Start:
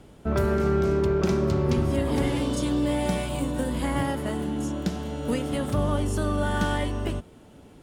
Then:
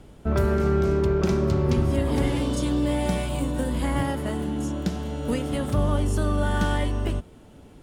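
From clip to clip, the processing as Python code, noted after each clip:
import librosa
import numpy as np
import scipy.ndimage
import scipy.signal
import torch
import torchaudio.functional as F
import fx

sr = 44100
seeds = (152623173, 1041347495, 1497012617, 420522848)

y = fx.low_shelf(x, sr, hz=65.0, db=8.5)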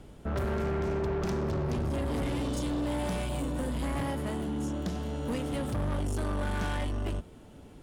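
y = 10.0 ** (-25.5 / 20.0) * np.tanh(x / 10.0 ** (-25.5 / 20.0))
y = y * librosa.db_to_amplitude(-2.0)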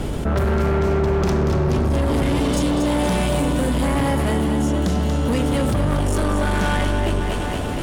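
y = fx.echo_split(x, sr, split_hz=460.0, low_ms=107, high_ms=235, feedback_pct=52, wet_db=-7)
y = fx.env_flatten(y, sr, amount_pct=70)
y = y * librosa.db_to_amplitude(9.0)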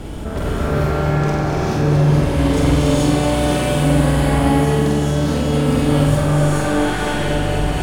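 y = fx.room_flutter(x, sr, wall_m=8.1, rt60_s=0.73)
y = fx.rev_gated(y, sr, seeds[0], gate_ms=480, shape='rising', drr_db=-6.5)
y = y * librosa.db_to_amplitude(-6.0)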